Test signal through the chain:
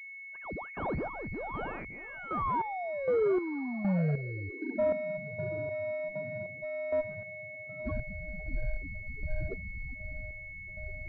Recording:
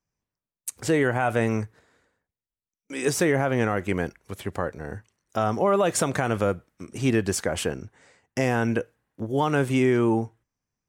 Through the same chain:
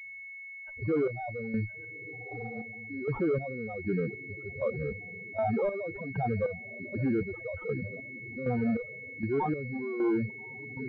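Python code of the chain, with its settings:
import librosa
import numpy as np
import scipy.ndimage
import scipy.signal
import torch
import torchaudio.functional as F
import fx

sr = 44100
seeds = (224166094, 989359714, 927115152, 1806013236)

p1 = fx.spec_expand(x, sr, power=2.5)
p2 = fx.tube_stage(p1, sr, drive_db=31.0, bias=0.25)
p3 = np.repeat(p2[::4], 4)[:len(p2)]
p4 = p3 + fx.echo_diffused(p3, sr, ms=1206, feedback_pct=47, wet_db=-10.0, dry=0)
p5 = fx.spec_topn(p4, sr, count=8)
p6 = fx.chopper(p5, sr, hz=1.3, depth_pct=65, duty_pct=40)
p7 = fx.dynamic_eq(p6, sr, hz=100.0, q=0.84, threshold_db=-50.0, ratio=4.0, max_db=-4)
p8 = fx.pwm(p7, sr, carrier_hz=2200.0)
y = F.gain(torch.from_numpy(p8), 7.0).numpy()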